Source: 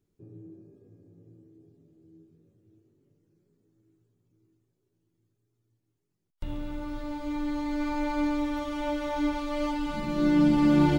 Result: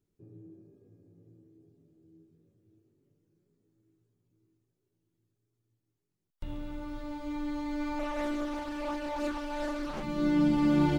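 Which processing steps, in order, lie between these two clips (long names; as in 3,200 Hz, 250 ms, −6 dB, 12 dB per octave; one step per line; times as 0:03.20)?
0:07.99–0:10.03: highs frequency-modulated by the lows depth 0.89 ms
level −4 dB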